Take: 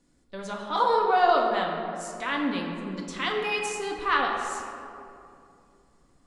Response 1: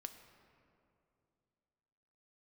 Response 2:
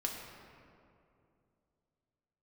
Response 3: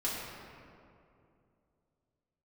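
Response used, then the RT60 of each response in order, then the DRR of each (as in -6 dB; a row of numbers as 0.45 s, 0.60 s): 2; 2.7 s, 2.6 s, 2.6 s; 7.0 dB, -0.5 dB, -8.0 dB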